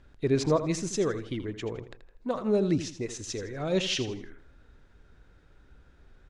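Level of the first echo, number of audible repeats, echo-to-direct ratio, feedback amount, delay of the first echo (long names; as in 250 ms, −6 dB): −12.0 dB, 3, −11.5 dB, 35%, 81 ms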